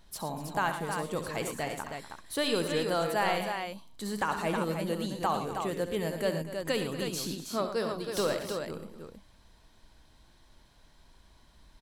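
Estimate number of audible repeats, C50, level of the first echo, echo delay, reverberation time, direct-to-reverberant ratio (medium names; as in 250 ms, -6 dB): 4, no reverb, -11.0 dB, 67 ms, no reverb, no reverb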